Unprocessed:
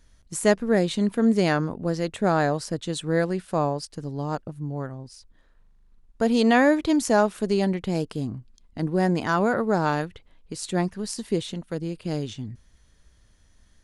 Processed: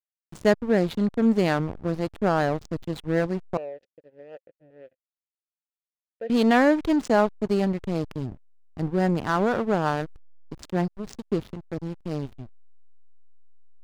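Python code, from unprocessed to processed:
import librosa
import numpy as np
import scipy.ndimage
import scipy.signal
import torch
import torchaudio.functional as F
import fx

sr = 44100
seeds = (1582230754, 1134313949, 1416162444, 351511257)

y = scipy.signal.sosfilt(scipy.signal.butter(2, 6500.0, 'lowpass', fs=sr, output='sos'), x)
y = fx.backlash(y, sr, play_db=-25.0)
y = fx.vowel_filter(y, sr, vowel='e', at=(3.57, 6.3))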